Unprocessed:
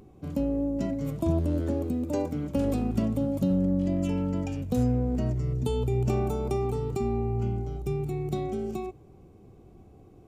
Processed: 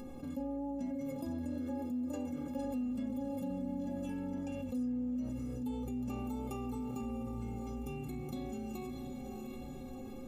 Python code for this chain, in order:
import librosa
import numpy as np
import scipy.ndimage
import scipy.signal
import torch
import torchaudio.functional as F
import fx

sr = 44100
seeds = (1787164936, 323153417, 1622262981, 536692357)

p1 = fx.stiff_resonator(x, sr, f0_hz=250.0, decay_s=0.28, stiffness=0.03)
p2 = p1 + fx.echo_diffused(p1, sr, ms=678, feedback_pct=41, wet_db=-10.5, dry=0)
p3 = fx.env_flatten(p2, sr, amount_pct=70)
y = p3 * 10.0 ** (-4.5 / 20.0)